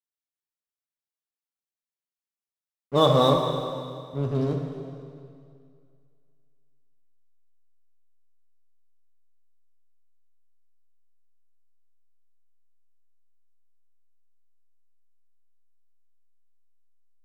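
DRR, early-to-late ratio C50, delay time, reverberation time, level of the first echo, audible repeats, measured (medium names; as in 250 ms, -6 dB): 2.0 dB, 3.5 dB, no echo, 2.3 s, no echo, no echo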